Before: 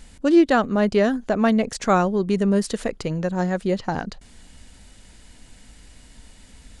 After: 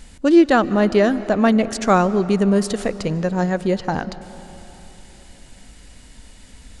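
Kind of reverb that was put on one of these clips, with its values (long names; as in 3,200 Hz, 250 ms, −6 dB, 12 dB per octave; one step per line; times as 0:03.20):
comb and all-pass reverb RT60 3.6 s, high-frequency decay 0.65×, pre-delay 105 ms, DRR 15 dB
level +3 dB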